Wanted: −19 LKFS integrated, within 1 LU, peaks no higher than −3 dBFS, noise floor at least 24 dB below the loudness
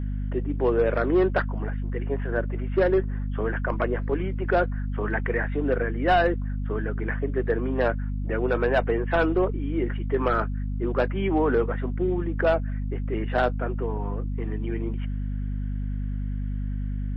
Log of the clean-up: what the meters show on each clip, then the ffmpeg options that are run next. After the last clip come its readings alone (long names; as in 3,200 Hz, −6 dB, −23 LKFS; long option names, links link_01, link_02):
mains hum 50 Hz; hum harmonics up to 250 Hz; level of the hum −26 dBFS; integrated loudness −26.5 LKFS; sample peak −12.0 dBFS; target loudness −19.0 LKFS
→ -af "bandreject=frequency=50:width_type=h:width=6,bandreject=frequency=100:width_type=h:width=6,bandreject=frequency=150:width_type=h:width=6,bandreject=frequency=200:width_type=h:width=6,bandreject=frequency=250:width_type=h:width=6"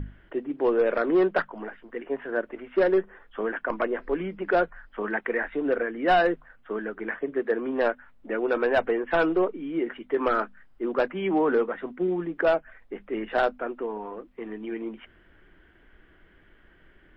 mains hum none found; integrated loudness −27.0 LKFS; sample peak −14.0 dBFS; target loudness −19.0 LKFS
→ -af "volume=8dB"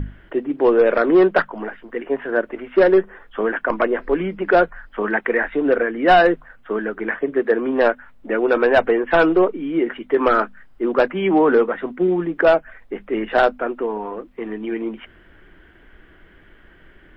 integrated loudness −19.0 LKFS; sample peak −6.0 dBFS; background noise floor −50 dBFS